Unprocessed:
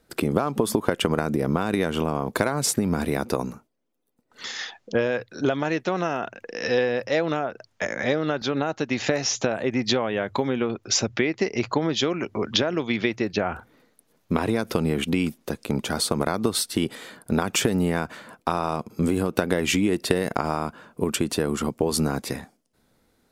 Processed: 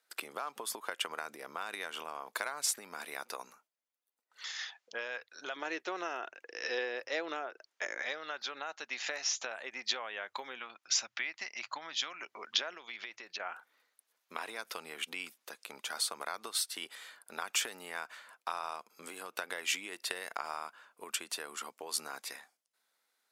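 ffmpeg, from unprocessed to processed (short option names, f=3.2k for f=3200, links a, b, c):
-filter_complex "[0:a]asettb=1/sr,asplit=3[a][b][c];[a]atrim=end=5.564[d];[b]atrim=start=5.56:end=8.02,asetpts=PTS-STARTPTS,afade=t=in:d=0.004:c=qsin,afade=t=out:st=2.456:d=0.004:c=qsin,equalizer=f=350:w=1.5:g=13.5[e];[c]atrim=start=8.016[f];[d][e]acrossfade=d=0.004:c1=hsin:c2=qsin[g];[g][f]acrossfade=d=0.004:c1=qsin:c2=hsin,asettb=1/sr,asplit=3[h][i][j];[h]atrim=end=10.594[k];[i]atrim=start=10.59:end=12.21,asetpts=PTS-STARTPTS,afade=t=in:d=0.004:c=qsin,afade=t=out:st=1.616:d=0.004:c=qsin,equalizer=f=420:t=o:w=0.48:g=-14.5[l];[j]atrim=start=12.206[m];[k][l]acrossfade=d=0.004:c1=hsin:c2=qsin[n];[n][m]acrossfade=d=0.004:c1=qsin:c2=hsin,asettb=1/sr,asplit=3[o][p][q];[o]atrim=end=12.744[r];[p]atrim=start=12.74:end=13.4,asetpts=PTS-STARTPTS,afade=t=in:d=0.004:c=qsin,afade=t=out:st=0.656:d=0.004:c=qsin,acompressor=threshold=-25dB:ratio=6:attack=3.2:release=140:knee=1:detection=peak[s];[q]atrim=start=13.396[t];[r][s]acrossfade=d=0.004:c1=hsin:c2=qsin[u];[u][t]acrossfade=d=0.004:c1=qsin:c2=hsin,highpass=1.1k,volume=-7.5dB"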